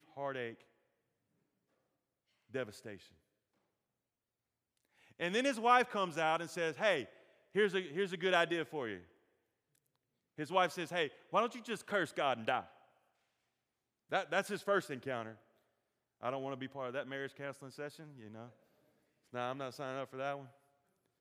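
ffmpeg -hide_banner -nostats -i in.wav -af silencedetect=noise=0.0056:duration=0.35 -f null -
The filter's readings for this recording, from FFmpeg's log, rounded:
silence_start: 0.54
silence_end: 2.54 | silence_duration: 2.01
silence_start: 2.96
silence_end: 5.20 | silence_duration: 2.24
silence_start: 7.05
silence_end: 7.55 | silence_duration: 0.50
silence_start: 8.99
silence_end: 10.39 | silence_duration: 1.39
silence_start: 12.63
silence_end: 14.12 | silence_duration: 1.49
silence_start: 15.32
silence_end: 16.23 | silence_duration: 0.91
silence_start: 18.48
silence_end: 19.34 | silence_duration: 0.86
silence_start: 20.45
silence_end: 21.20 | silence_duration: 0.76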